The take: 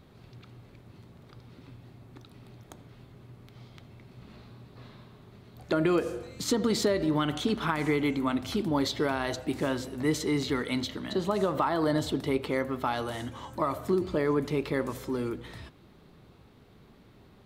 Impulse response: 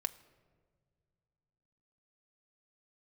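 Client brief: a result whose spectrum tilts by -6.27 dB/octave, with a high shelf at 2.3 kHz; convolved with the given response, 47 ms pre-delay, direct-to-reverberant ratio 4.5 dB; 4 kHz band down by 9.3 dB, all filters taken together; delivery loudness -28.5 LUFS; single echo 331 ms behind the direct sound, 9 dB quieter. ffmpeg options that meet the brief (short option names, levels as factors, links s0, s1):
-filter_complex "[0:a]highshelf=f=2300:g=-6,equalizer=f=4000:t=o:g=-6,aecho=1:1:331:0.355,asplit=2[s0][s1];[1:a]atrim=start_sample=2205,adelay=47[s2];[s1][s2]afir=irnorm=-1:irlink=0,volume=0.562[s3];[s0][s3]amix=inputs=2:normalize=0"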